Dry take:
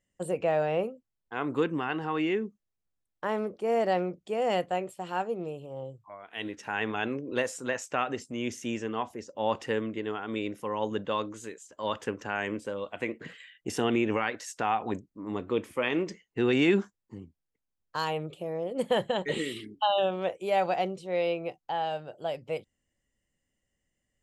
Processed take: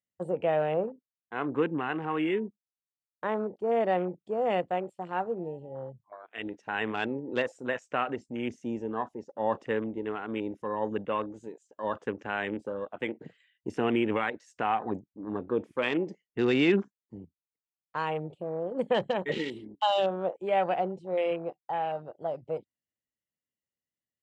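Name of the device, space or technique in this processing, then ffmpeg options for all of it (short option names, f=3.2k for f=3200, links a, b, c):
over-cleaned archive recording: -af "highpass=100,lowpass=7.8k,afwtdn=0.01"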